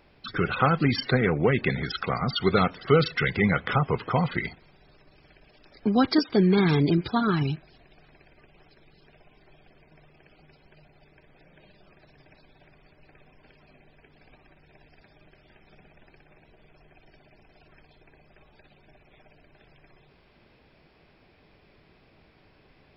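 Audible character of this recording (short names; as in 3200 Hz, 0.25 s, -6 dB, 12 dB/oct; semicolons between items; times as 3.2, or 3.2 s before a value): noise floor -60 dBFS; spectral tilt -5.0 dB/oct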